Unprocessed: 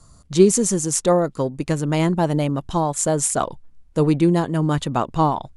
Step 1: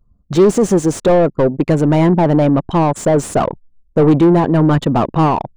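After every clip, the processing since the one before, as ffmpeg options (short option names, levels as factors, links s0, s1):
-filter_complex "[0:a]anlmdn=10,asplit=2[s0][s1];[s1]highpass=f=720:p=1,volume=25.1,asoftclip=type=tanh:threshold=0.794[s2];[s0][s2]amix=inputs=2:normalize=0,lowpass=f=3400:p=1,volume=0.501,tiltshelf=f=970:g=7.5,volume=0.531"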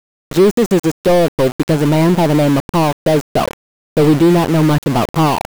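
-af "aeval=exprs='val(0)*gte(abs(val(0)),0.133)':c=same"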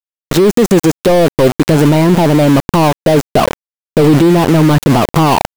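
-af "alimiter=level_in=3.76:limit=0.891:release=50:level=0:latency=1,volume=0.891"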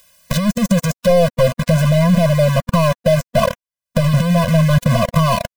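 -af "acompressor=mode=upward:threshold=0.282:ratio=2.5,afftfilt=real='re*eq(mod(floor(b*sr/1024/240),2),0)':imag='im*eq(mod(floor(b*sr/1024/240),2),0)':win_size=1024:overlap=0.75,volume=0.841"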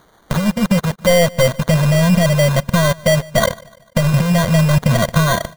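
-af "acrusher=samples=17:mix=1:aa=0.000001,aecho=1:1:148|296|444:0.0708|0.0326|0.015"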